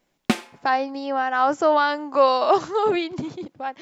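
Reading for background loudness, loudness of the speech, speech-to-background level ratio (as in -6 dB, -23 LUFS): -26.5 LUFS, -21.5 LUFS, 5.0 dB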